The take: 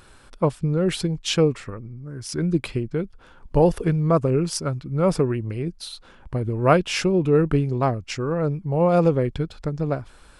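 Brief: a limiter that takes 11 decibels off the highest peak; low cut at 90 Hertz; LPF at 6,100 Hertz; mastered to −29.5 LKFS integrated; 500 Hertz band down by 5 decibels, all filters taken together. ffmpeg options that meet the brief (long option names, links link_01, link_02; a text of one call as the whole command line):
ffmpeg -i in.wav -af "highpass=90,lowpass=6100,equalizer=frequency=500:width_type=o:gain=-6,volume=-3dB,alimiter=limit=-18.5dB:level=0:latency=1" out.wav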